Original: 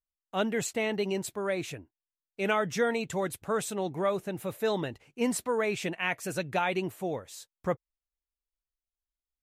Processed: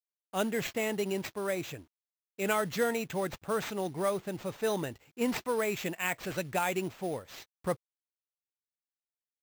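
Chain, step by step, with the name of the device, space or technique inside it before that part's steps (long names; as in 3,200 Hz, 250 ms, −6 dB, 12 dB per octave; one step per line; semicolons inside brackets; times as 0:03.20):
early companding sampler (sample-rate reduction 9,900 Hz, jitter 0%; log-companded quantiser 6 bits)
level −2 dB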